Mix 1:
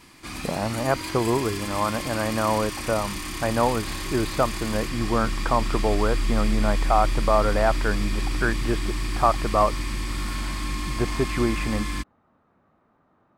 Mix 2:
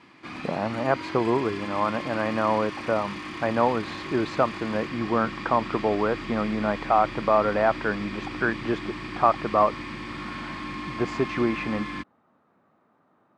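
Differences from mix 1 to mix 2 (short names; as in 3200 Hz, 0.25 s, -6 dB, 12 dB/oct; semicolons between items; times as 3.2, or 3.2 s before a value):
background: add LPF 2800 Hz 12 dB/oct; master: add HPF 150 Hz 12 dB/oct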